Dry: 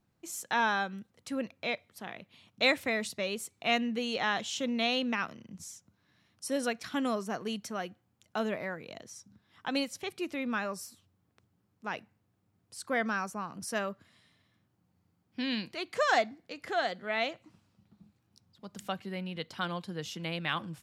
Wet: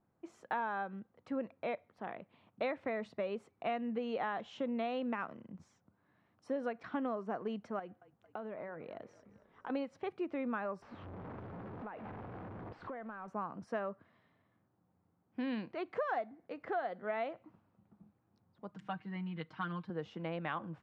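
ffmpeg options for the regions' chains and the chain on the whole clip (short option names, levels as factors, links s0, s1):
-filter_complex "[0:a]asettb=1/sr,asplit=3[s0][s1][s2];[s0]atrim=end=7.794[s3];[s1]atrim=start=7.79:end=9.7,asetpts=PTS-STARTPTS,afade=t=in:d=0.004:c=qsin,afade=t=out:st=1.906:d=0.004:c=qsin,acompressor=threshold=0.0112:ratio=10:attack=3.2:release=140:knee=1:detection=peak,asplit=6[s4][s5][s6][s7][s8][s9];[s5]adelay=225,afreqshift=-35,volume=0.126[s10];[s6]adelay=450,afreqshift=-70,volume=0.0759[s11];[s7]adelay=675,afreqshift=-105,volume=0.0452[s12];[s8]adelay=900,afreqshift=-140,volume=0.0272[s13];[s9]adelay=1125,afreqshift=-175,volume=0.0164[s14];[s4][s10][s11][s12][s13][s14]amix=inputs=6:normalize=0,atrim=end_sample=84231[s15];[s2]atrim=start=9.696[s16];[s3][s15]acrossfade=d=0.004:c1=hsin:c2=qsin[s17];[s17][s16]acrossfade=d=0.004:c1=qsin:c2=hsin,asettb=1/sr,asplit=3[s18][s19][s20];[s18]atrim=end=10.824[s21];[s19]atrim=start=10.82:end=13.28,asetpts=PTS-STARTPTS,afade=t=in:d=0.004:c=qsin,afade=t=out:st=2.456:d=0.004:c=qsin,aeval=exprs='val(0)+0.5*0.0133*sgn(val(0))':c=same,lowpass=3100,acompressor=threshold=0.00891:ratio=10:attack=3.2:release=140:knee=1:detection=peak[s22];[s20]atrim=start=13.276[s23];[s21][s22]acrossfade=d=0.004:c1=hsin:c2=qsin[s24];[s24][s23]acrossfade=d=0.004:c1=qsin:c2=hsin,asettb=1/sr,asplit=3[s25][s26][s27];[s25]atrim=end=18.714[s28];[s26]atrim=start=18.71:end=19.9,asetpts=PTS-STARTPTS,afade=t=in:d=0.004:c=qsin,afade=t=out:st=1.186:d=0.004:c=qsin,equalizer=f=540:w=0.97:g=-13,aecho=1:1:6.4:0.79,atrim=end_sample=52479[s29];[s27]atrim=start=19.896[s30];[s28][s29]acrossfade=d=0.004:c1=hsin:c2=qsin[s31];[s31][s30]acrossfade=d=0.004:c1=qsin:c2=hsin,lowpass=1100,lowshelf=f=260:g=-10.5,acompressor=threshold=0.0141:ratio=6,volume=1.58"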